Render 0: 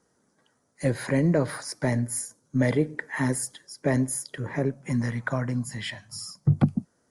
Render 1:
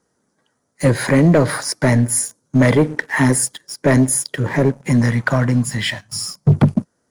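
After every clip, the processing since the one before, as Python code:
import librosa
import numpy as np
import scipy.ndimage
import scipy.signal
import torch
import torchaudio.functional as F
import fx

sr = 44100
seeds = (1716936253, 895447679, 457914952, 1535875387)

y = fx.leveller(x, sr, passes=2)
y = y * librosa.db_to_amplitude(5.0)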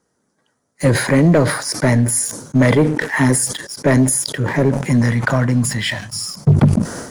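y = fx.sustainer(x, sr, db_per_s=73.0)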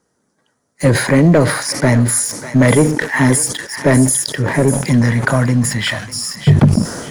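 y = fx.echo_thinned(x, sr, ms=598, feedback_pct=31, hz=1200.0, wet_db=-9.0)
y = y * librosa.db_to_amplitude(2.0)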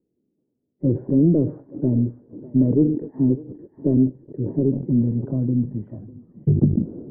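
y = fx.ladder_lowpass(x, sr, hz=400.0, resonance_pct=50)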